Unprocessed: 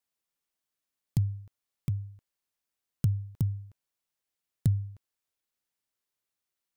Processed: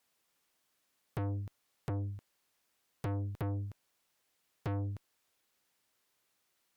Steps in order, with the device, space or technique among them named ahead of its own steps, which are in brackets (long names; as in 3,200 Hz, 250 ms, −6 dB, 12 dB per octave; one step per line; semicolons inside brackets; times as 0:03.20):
tube preamp driven hard (tube saturation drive 43 dB, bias 0.25; low-shelf EQ 120 Hz −7 dB; high-shelf EQ 4,800 Hz −4.5 dB)
level +13 dB